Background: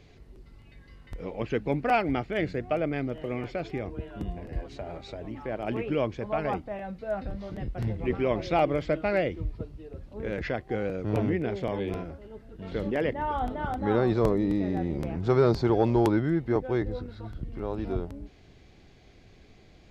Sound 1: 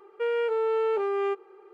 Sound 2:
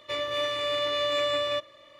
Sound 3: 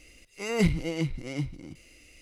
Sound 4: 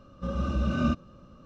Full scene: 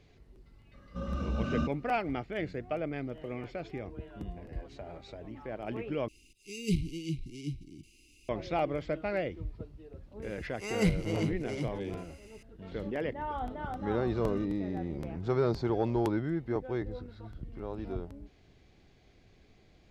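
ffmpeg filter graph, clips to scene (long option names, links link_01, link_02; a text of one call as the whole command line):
ffmpeg -i bed.wav -i cue0.wav -i cue1.wav -i cue2.wav -i cue3.wav -filter_complex "[4:a]asplit=2[link_01][link_02];[3:a]asplit=2[link_03][link_04];[0:a]volume=-6.5dB[link_05];[link_03]asuperstop=centerf=1000:order=20:qfactor=0.52[link_06];[link_05]asplit=2[link_07][link_08];[link_07]atrim=end=6.084[link_09];[link_06]atrim=end=2.21,asetpts=PTS-STARTPTS,volume=-5.5dB[link_10];[link_08]atrim=start=8.286[link_11];[link_01]atrim=end=1.45,asetpts=PTS-STARTPTS,volume=-5.5dB,afade=type=in:duration=0.004:curve=hsin,afade=type=out:start_time=1.446:duration=0.004:curve=hsin,adelay=730[link_12];[link_04]atrim=end=2.21,asetpts=PTS-STARTPTS,volume=-4dB,afade=type=in:duration=0.004:curve=hsin,afade=type=out:start_time=2.206:duration=0.004:curve=hsin,adelay=10220[link_13];[link_02]atrim=end=1.45,asetpts=PTS-STARTPTS,volume=-16.5dB,afade=type=in:duration=0.004:curve=hsin,afade=type=out:start_time=1.446:duration=0.004:curve=hsin,adelay=13510[link_14];[link_09][link_10]acrossfade=duration=0.004:curve1=hsin:curve2=hsin[link_15];[link_15][link_11]acrossfade=duration=0.004:curve1=hsin:curve2=hsin[link_16];[link_16][link_12][link_13][link_14]amix=inputs=4:normalize=0" out.wav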